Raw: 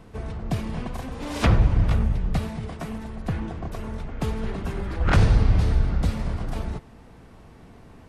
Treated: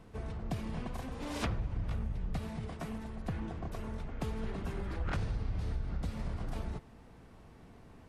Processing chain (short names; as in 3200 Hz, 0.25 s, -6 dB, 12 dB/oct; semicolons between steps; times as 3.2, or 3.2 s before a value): compressor 6:1, threshold -24 dBFS, peak gain reduction 11.5 dB; gain -7.5 dB